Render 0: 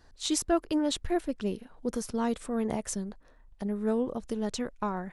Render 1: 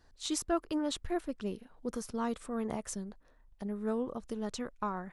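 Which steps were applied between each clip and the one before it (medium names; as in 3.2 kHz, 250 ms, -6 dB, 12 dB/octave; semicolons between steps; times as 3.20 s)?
dynamic bell 1.2 kHz, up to +6 dB, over -51 dBFS, Q 2.6; trim -5.5 dB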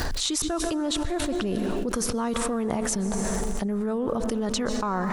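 crackle 80 per s -58 dBFS; plate-style reverb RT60 2.1 s, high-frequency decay 0.85×, pre-delay 110 ms, DRR 14.5 dB; level flattener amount 100%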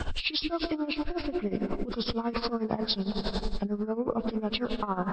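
knee-point frequency compression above 1.3 kHz 1.5:1; tremolo 11 Hz, depth 80%; three bands expanded up and down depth 40%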